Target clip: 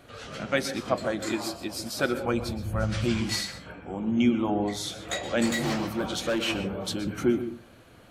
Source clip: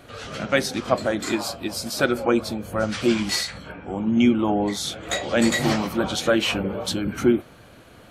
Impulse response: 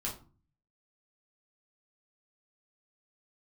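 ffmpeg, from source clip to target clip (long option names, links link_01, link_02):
-filter_complex "[0:a]asplit=3[link_01][link_02][link_03];[link_01]afade=type=out:start_time=2.24:duration=0.02[link_04];[link_02]asubboost=boost=8:cutoff=120,afade=type=in:start_time=2.24:duration=0.02,afade=type=out:start_time=3.2:duration=0.02[link_05];[link_03]afade=type=in:start_time=3.2:duration=0.02[link_06];[link_04][link_05][link_06]amix=inputs=3:normalize=0,asplit=2[link_07][link_08];[1:a]atrim=start_sample=2205,asetrate=70560,aresample=44100,adelay=117[link_09];[link_08][link_09]afir=irnorm=-1:irlink=0,volume=-10.5dB[link_10];[link_07][link_10]amix=inputs=2:normalize=0,asettb=1/sr,asplit=3[link_11][link_12][link_13];[link_11]atrim=end=5.464[link_14];[link_12]atrim=start=5.46:end=6.46,asetpts=PTS-STARTPTS,afade=type=in:duration=0.004:curve=qsin,afade=type=out:start_time=0.996:duration=0.004:curve=qsin,volume=17dB,asoftclip=hard,volume=-17dB[link_15];[link_13]atrim=start=6.456[link_16];[link_14][link_15]acrossfade=duration=0.004:curve1=hsin:curve2=qsin[link_17];[link_17][link_16]acrossfade=duration=0.004:curve1=qsin:curve2=hsin,volume=-5.5dB"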